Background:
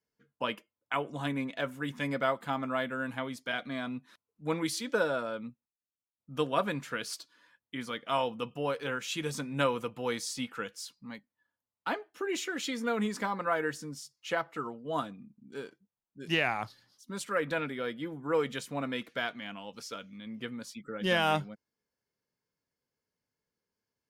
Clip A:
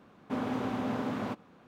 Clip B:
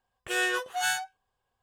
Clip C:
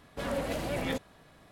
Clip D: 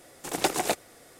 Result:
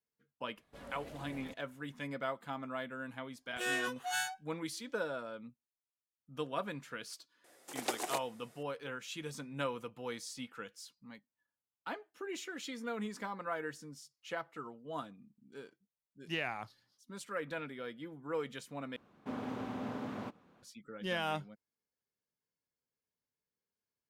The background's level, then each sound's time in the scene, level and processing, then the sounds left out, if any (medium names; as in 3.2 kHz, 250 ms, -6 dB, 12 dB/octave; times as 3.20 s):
background -8.5 dB
0.56 s: add C -17 dB
3.30 s: add B -7.5 dB
7.44 s: add D -10.5 dB + high-pass 280 Hz
18.96 s: replace with A -7.5 dB